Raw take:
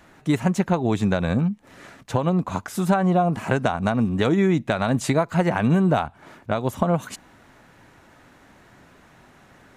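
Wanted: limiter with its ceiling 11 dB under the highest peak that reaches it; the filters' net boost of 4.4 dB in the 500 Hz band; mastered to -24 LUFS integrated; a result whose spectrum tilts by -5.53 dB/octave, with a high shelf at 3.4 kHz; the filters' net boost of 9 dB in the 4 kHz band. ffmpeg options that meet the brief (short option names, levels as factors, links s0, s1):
-af "equalizer=f=500:t=o:g=5.5,highshelf=f=3400:g=6.5,equalizer=f=4000:t=o:g=6.5,alimiter=limit=0.211:level=0:latency=1"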